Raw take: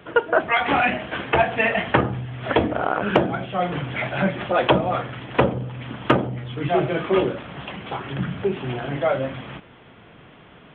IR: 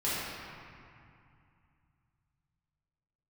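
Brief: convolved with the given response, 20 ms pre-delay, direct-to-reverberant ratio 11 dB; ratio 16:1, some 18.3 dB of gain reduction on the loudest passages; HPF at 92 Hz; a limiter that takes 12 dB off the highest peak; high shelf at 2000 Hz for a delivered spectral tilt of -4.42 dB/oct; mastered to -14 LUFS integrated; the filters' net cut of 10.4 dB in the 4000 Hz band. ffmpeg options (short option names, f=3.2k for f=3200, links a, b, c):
-filter_complex "[0:a]highpass=92,highshelf=f=2k:g=-7,equalizer=f=4k:t=o:g=-8.5,acompressor=threshold=-32dB:ratio=16,alimiter=level_in=5dB:limit=-24dB:level=0:latency=1,volume=-5dB,asplit=2[a][b];[1:a]atrim=start_sample=2205,adelay=20[c];[b][c]afir=irnorm=-1:irlink=0,volume=-20.5dB[d];[a][d]amix=inputs=2:normalize=0,volume=25dB"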